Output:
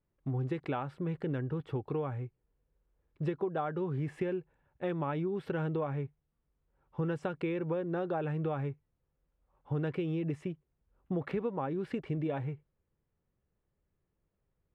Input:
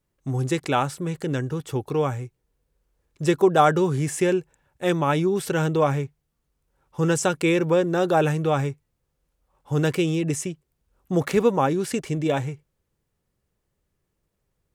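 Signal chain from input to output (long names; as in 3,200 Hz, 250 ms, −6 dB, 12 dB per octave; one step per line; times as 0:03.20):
downward compressor, threshold −25 dBFS, peak gain reduction 12.5 dB
high-frequency loss of the air 440 metres
level −4.5 dB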